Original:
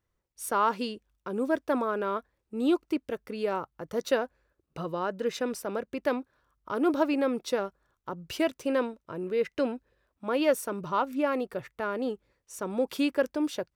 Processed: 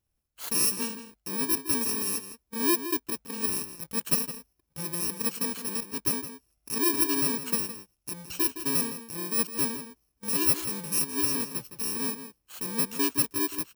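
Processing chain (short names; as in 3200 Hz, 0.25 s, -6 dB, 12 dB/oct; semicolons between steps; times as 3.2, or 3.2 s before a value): FFT order left unsorted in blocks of 64 samples; outdoor echo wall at 28 m, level -10 dB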